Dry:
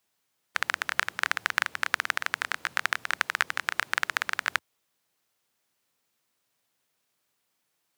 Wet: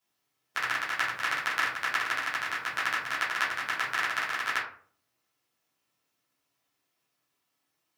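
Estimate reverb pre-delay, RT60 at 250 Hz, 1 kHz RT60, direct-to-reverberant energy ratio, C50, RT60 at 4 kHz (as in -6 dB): 8 ms, 0.55 s, 0.45 s, -9.0 dB, 6.0 dB, 0.25 s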